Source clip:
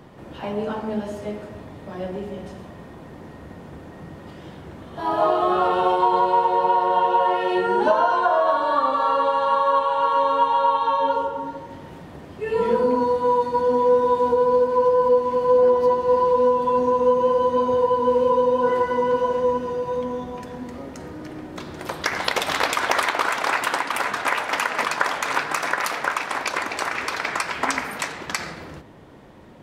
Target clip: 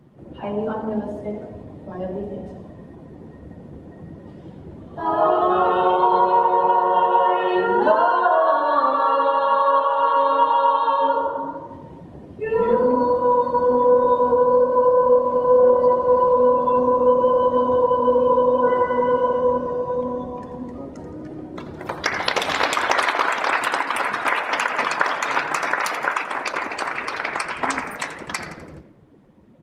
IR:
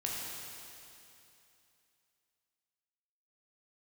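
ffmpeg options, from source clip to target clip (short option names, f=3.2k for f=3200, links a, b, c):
-filter_complex "[0:a]afftdn=nr=13:nf=-36,asplit=2[a][b];[b]asplit=5[c][d][e][f][g];[c]adelay=84,afreqshift=33,volume=-13dB[h];[d]adelay=168,afreqshift=66,volume=-18.7dB[i];[e]adelay=252,afreqshift=99,volume=-24.4dB[j];[f]adelay=336,afreqshift=132,volume=-30dB[k];[g]adelay=420,afreqshift=165,volume=-35.7dB[l];[h][i][j][k][l]amix=inputs=5:normalize=0[m];[a][m]amix=inputs=2:normalize=0,volume=1.5dB" -ar 48000 -c:a libopus -b:a 24k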